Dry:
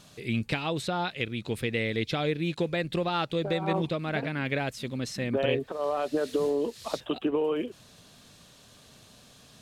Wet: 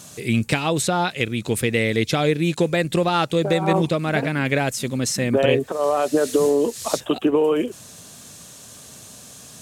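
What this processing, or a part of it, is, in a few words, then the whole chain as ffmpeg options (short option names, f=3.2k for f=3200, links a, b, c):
budget condenser microphone: -af "highpass=62,highshelf=f=5.4k:t=q:w=1.5:g=8,volume=9dB"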